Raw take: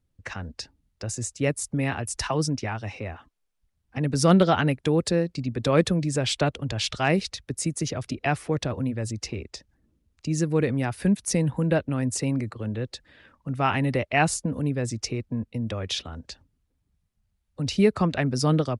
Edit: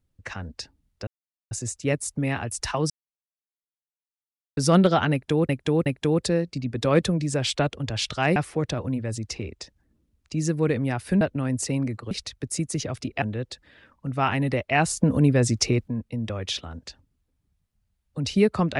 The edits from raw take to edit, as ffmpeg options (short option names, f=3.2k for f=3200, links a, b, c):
-filter_complex "[0:a]asplit=12[a][b][c][d][e][f][g][h][i][j][k][l];[a]atrim=end=1.07,asetpts=PTS-STARTPTS,afade=t=out:st=1.066:d=0.004:c=hsin,apad=pad_dur=0.44[m];[b]atrim=start=1.07:end=2.46,asetpts=PTS-STARTPTS,afade=t=in:d=0.004:c=hsin,afade=t=out:st=1.386:d=0.004:c=hsin[n];[c]atrim=start=2.46:end=4.13,asetpts=PTS-STARTPTS,volume=0[o];[d]atrim=start=4.13:end=5.052,asetpts=PTS-STARTPTS,afade=t=in:d=0.004:c=hsin[p];[e]atrim=start=4.678:end=5.052[q];[f]atrim=start=4.678:end=7.182[r];[g]atrim=start=8.288:end=11.142[s];[h]atrim=start=11.738:end=12.642[t];[i]atrim=start=7.178:end=8.292[u];[j]atrim=start=12.638:end=14.392[v];[k]atrim=start=14.388:end=15.302,asetpts=PTS-STARTPTS,volume=7.5dB[w];[l]atrim=start=15.298[x];[m][n][o][p]concat=n=4:v=0:a=1[y];[y][q]acrossfade=d=0.004:c1=hsin:c2=hsin[z];[z][r]acrossfade=d=0.004:c1=hsin:c2=hsin[aa];[aa][s]acrossfade=d=0.004:c1=hsin:c2=hsin[ab];[ab][t]acrossfade=d=0.004:c1=hsin:c2=hsin[ac];[ac][u]acrossfade=d=0.004:c1=hsin:c2=hsin[ad];[ad][v]acrossfade=d=0.004:c1=hsin:c2=hsin[ae];[ae][w]acrossfade=d=0.004:c1=hsin:c2=hsin[af];[af][x]acrossfade=d=0.004:c1=hsin:c2=hsin"